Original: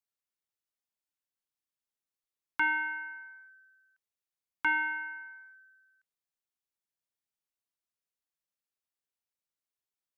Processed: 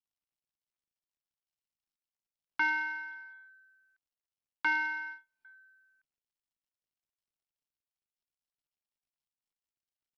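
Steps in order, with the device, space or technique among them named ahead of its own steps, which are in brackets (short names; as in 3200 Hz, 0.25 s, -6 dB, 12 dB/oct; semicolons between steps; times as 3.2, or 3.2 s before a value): 4.65–5.45 gate -42 dBFS, range -37 dB; dynamic EQ 580 Hz, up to +3 dB, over -58 dBFS, Q 4.8; Bluetooth headset (HPF 160 Hz 6 dB/oct; downsampling 16000 Hz; gain -1 dB; SBC 64 kbps 44100 Hz)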